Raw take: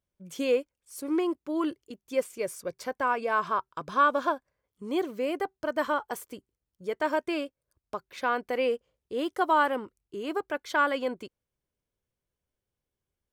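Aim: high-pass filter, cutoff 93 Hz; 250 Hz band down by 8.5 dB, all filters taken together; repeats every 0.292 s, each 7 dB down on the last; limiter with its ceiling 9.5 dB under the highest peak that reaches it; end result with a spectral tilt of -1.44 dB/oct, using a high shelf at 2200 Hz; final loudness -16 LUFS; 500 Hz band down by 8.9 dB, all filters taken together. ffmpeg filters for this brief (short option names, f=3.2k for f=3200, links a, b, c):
-af "highpass=93,equalizer=f=250:t=o:g=-7.5,equalizer=f=500:t=o:g=-8.5,highshelf=f=2.2k:g=-6,alimiter=level_in=1dB:limit=-24dB:level=0:latency=1,volume=-1dB,aecho=1:1:292|584|876|1168|1460:0.447|0.201|0.0905|0.0407|0.0183,volume=21.5dB"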